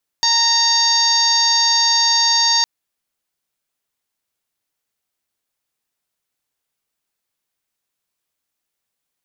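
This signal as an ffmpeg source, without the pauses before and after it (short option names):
-f lavfi -i "aevalsrc='0.0891*sin(2*PI*925*t)+0.0562*sin(2*PI*1850*t)+0.0141*sin(2*PI*2775*t)+0.0708*sin(2*PI*3700*t)+0.178*sin(2*PI*4625*t)+0.0794*sin(2*PI*5550*t)+0.0841*sin(2*PI*6475*t)':d=2.41:s=44100"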